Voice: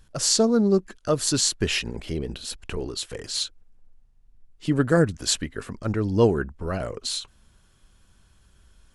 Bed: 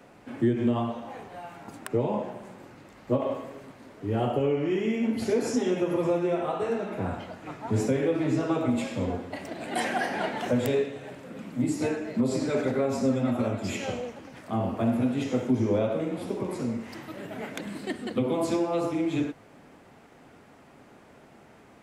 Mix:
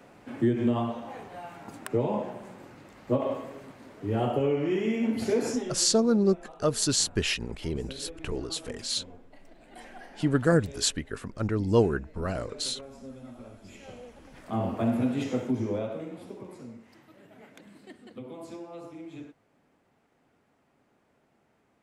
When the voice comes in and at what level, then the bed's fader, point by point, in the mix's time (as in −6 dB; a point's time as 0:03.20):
5.55 s, −3.0 dB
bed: 0:05.51 −0.5 dB
0:05.87 −19 dB
0:13.62 −19 dB
0:14.58 −1 dB
0:15.21 −1 dB
0:16.84 −15.5 dB